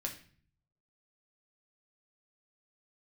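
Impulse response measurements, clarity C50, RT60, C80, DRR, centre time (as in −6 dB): 9.5 dB, 0.45 s, 14.0 dB, 1.5 dB, 16 ms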